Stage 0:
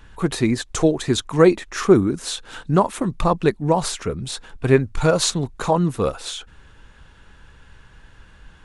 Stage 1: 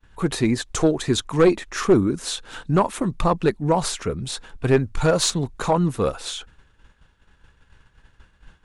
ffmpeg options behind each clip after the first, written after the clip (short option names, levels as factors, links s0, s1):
-af "agate=range=0.0224:threshold=0.0126:ratio=3:detection=peak,aeval=exprs='0.891*(cos(1*acos(clip(val(0)/0.891,-1,1)))-cos(1*PI/2))+0.158*(cos(2*acos(clip(val(0)/0.891,-1,1)))-cos(2*PI/2))+0.0794*(cos(5*acos(clip(val(0)/0.891,-1,1)))-cos(5*PI/2))+0.00891*(cos(6*acos(clip(val(0)/0.891,-1,1)))-cos(6*PI/2))+0.01*(cos(8*acos(clip(val(0)/0.891,-1,1)))-cos(8*PI/2))':c=same,volume=0.668"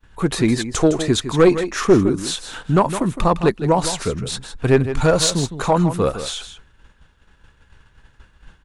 -af "aecho=1:1:160:0.282,volume=1.41"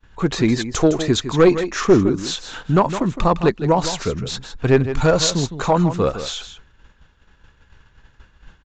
-af "aresample=16000,aresample=44100"